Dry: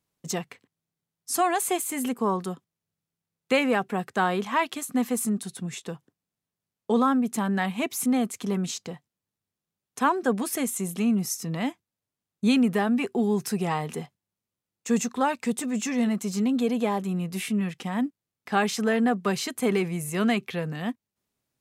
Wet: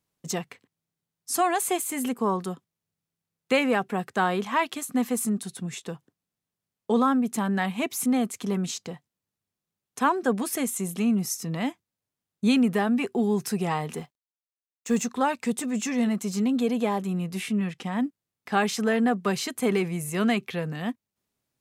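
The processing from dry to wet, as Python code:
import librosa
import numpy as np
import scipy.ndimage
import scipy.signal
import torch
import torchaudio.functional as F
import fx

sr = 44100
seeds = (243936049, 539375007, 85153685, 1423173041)

y = fx.law_mismatch(x, sr, coded='A', at=(13.96, 15.03))
y = fx.high_shelf(y, sr, hz=11000.0, db=-9.0, at=(17.33, 18.01))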